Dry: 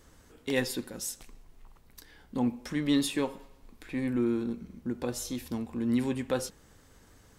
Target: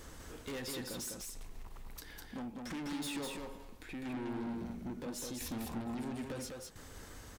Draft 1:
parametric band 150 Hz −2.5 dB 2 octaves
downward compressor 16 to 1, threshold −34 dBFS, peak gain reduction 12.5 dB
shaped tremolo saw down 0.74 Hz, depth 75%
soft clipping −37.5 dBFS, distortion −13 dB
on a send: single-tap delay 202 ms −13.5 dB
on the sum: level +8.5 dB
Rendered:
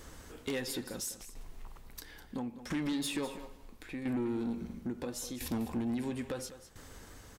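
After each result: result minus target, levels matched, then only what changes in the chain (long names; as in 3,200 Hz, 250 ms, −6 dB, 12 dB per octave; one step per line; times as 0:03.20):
echo-to-direct −10 dB; soft clipping: distortion −8 dB
change: single-tap delay 202 ms −3.5 dB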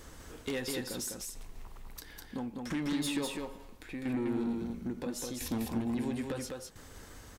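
soft clipping: distortion −8 dB
change: soft clipping −47.5 dBFS, distortion −5 dB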